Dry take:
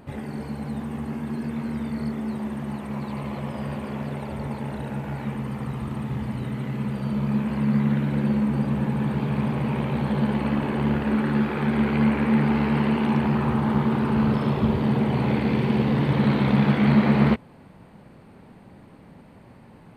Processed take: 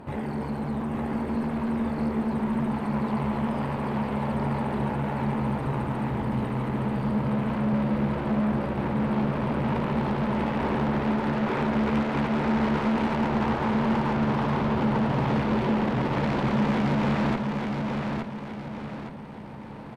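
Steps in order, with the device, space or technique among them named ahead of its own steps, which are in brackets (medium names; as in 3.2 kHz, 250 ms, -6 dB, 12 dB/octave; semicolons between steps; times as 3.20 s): peaking EQ 930 Hz +5.5 dB 0.35 oct; tube preamp driven hard (valve stage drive 30 dB, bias 0.5; bass shelf 150 Hz -3 dB; treble shelf 3.2 kHz -9 dB); feedback delay 867 ms, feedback 42%, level -4 dB; trim +6.5 dB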